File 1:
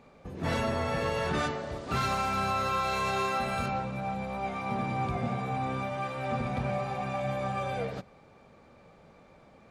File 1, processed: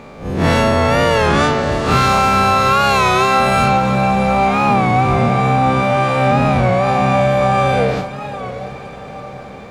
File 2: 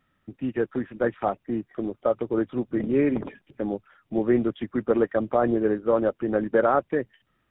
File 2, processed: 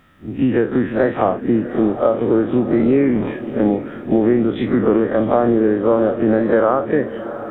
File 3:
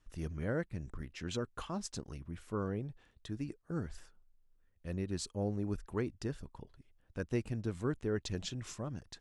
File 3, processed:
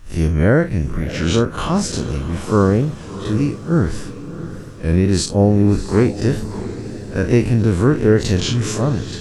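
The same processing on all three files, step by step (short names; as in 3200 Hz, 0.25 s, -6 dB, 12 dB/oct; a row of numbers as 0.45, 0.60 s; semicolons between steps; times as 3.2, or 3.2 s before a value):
time blur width 84 ms; compressor, threshold -31 dBFS; diffused feedback echo 0.682 s, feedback 53%, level -13 dB; record warp 33 1/3 rpm, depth 100 cents; normalise peaks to -1.5 dBFS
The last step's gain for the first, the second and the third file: +21.5, +19.0, +24.5 dB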